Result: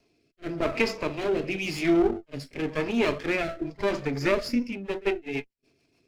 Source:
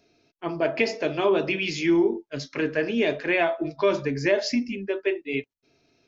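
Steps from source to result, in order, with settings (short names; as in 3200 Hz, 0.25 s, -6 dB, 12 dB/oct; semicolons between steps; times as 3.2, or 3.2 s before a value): minimum comb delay 0.4 ms; reverse echo 46 ms -21 dB; rotary speaker horn 0.9 Hz, later 7 Hz, at 4.26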